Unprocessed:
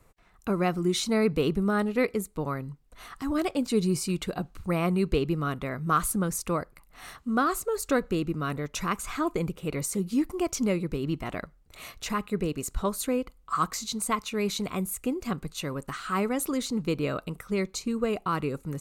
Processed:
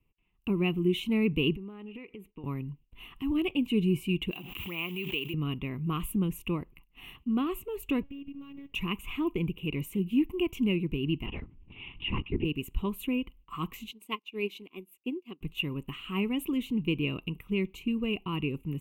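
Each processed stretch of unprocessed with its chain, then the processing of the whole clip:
1.56–2.44 s: tone controls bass -10 dB, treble -12 dB + compression 5:1, threshold -37 dBFS
4.31–5.34 s: block-companded coder 5-bit + high-pass 1.1 kHz 6 dB/octave + swell ahead of each attack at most 34 dB/s
8.03–8.72 s: median filter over 15 samples + robot voice 280 Hz + compression 12:1, threshold -37 dBFS
11.26–12.45 s: upward compressor, threshold -40 dBFS + LPC vocoder at 8 kHz whisper + tape noise reduction on one side only decoder only
13.91–15.41 s: resonant high-pass 330 Hz, resonance Q 1.6 + peaking EQ 4.9 kHz +11 dB 0.59 oct + upward expansion 2.5:1, over -41 dBFS
whole clip: gate -52 dBFS, range -12 dB; FFT filter 360 Hz 0 dB, 600 Hz -18 dB, 1 kHz -6 dB, 1.5 kHz -23 dB, 2.8 kHz +10 dB, 4.6 kHz -28 dB, 9.2 kHz -17 dB, 15 kHz 0 dB

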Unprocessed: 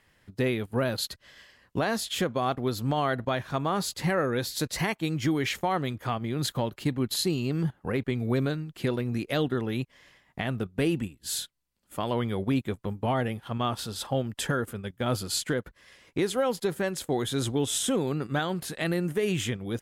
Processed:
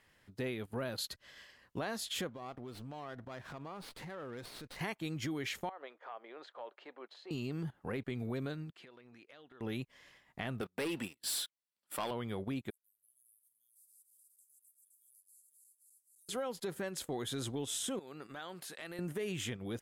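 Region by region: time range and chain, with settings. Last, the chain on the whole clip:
2.29–4.81 s: compression 10:1, threshold -37 dBFS + treble shelf 8.9 kHz -7.5 dB + sliding maximum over 5 samples
5.69–7.31 s: high-pass 510 Hz 24 dB/octave + compression 12:1, threshold -31 dBFS + tape spacing loss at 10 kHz 40 dB
8.70–9.61 s: high-pass 1.4 kHz 6 dB/octave + tape spacing loss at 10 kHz 20 dB + compression 10:1, threshold -48 dBFS
10.61–12.11 s: high-pass 640 Hz 6 dB/octave + waveshaping leveller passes 3 + band-stop 6.6 kHz, Q 6
12.70–16.29 s: backward echo that repeats 128 ms, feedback 74%, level -13 dB + inverse Chebyshev high-pass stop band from 2.6 kHz, stop band 70 dB + compression 8:1, threshold -57 dBFS
17.99–18.99 s: high-pass 540 Hz 6 dB/octave + compression 2.5:1, threshold -41 dBFS
whole clip: bass shelf 210 Hz -4 dB; transient shaper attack -5 dB, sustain -1 dB; compression, threshold -32 dBFS; trim -3 dB

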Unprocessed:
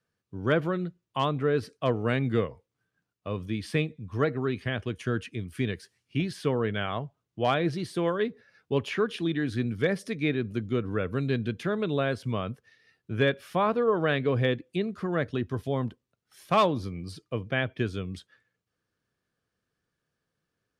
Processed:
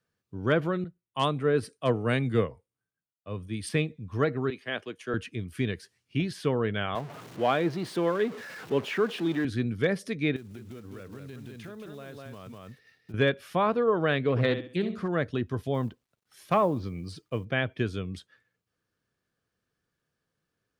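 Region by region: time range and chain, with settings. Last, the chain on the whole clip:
0.84–3.69 s: peaking EQ 9.1 kHz +13 dB 0.29 oct + three bands expanded up and down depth 70%
4.50–5.14 s: high-pass 320 Hz + three bands expanded up and down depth 100%
6.95–9.45 s: jump at every zero crossing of -35 dBFS + high-pass 180 Hz + treble shelf 4.5 kHz -10.5 dB
10.36–13.14 s: block-companded coder 5-bit + delay 201 ms -6 dB + compression, threshold -40 dBFS
14.30–15.08 s: flutter echo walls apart 11.5 m, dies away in 0.42 s + loudspeaker Doppler distortion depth 0.21 ms
15.74–17.45 s: low-pass that closes with the level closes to 990 Hz, closed at -18 dBFS + companded quantiser 8-bit
whole clip: none

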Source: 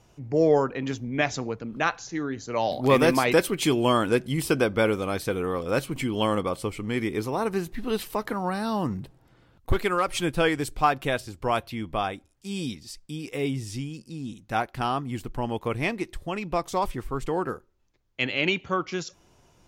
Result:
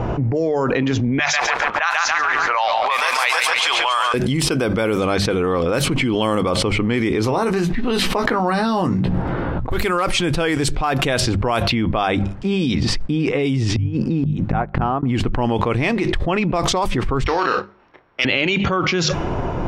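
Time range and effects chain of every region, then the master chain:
1.19–4.14 s: high-pass 880 Hz 24 dB/octave + bit-crushed delay 141 ms, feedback 55%, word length 8-bit, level -6 dB
7.24–9.70 s: treble shelf 11 kHz +6.5 dB + hum notches 60/120/180/240/300 Hz + doubling 17 ms -7 dB
13.61–15.03 s: low-pass 8.1 kHz + inverted gate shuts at -26 dBFS, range -31 dB
17.24–18.25 s: sorted samples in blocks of 8 samples + band-pass filter 2.3 kHz, Q 0.78 + doubling 30 ms -9.5 dB
whole clip: hum notches 50/100/150/200 Hz; level-controlled noise filter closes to 1.2 kHz, open at -19.5 dBFS; level flattener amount 100%; trim -2 dB

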